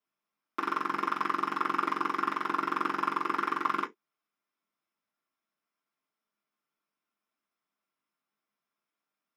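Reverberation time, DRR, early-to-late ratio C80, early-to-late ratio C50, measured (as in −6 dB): non-exponential decay, −7.5 dB, 34.5 dB, 23.0 dB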